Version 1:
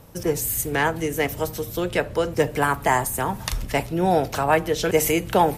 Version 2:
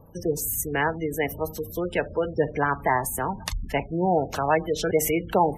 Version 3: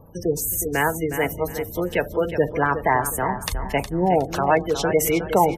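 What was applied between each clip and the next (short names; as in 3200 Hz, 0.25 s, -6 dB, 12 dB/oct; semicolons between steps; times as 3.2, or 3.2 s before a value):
spectral gate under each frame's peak -20 dB strong; notches 60/120 Hz; gain -2.5 dB
feedback echo 0.364 s, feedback 29%, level -10 dB; gain +3 dB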